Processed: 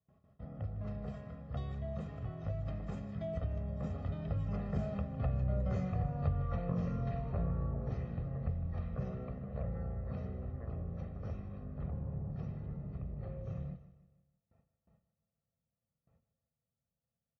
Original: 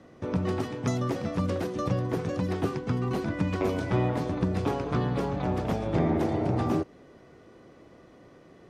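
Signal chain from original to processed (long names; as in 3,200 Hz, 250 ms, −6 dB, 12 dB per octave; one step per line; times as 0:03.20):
source passing by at 0:02.89, 36 m/s, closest 20 metres
wrong playback speed 15 ips tape played at 7.5 ips
parametric band 3,200 Hz −4 dB 0.59 octaves
downward compressor 2 to 1, threshold −38 dBFS, peak gain reduction 9.5 dB
parametric band 6,400 Hz −6.5 dB 2.5 octaves
comb filter 1.6 ms, depth 82%
noise gate with hold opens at −57 dBFS
high-pass filter 57 Hz
on a send: repeating echo 155 ms, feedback 45%, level −15 dB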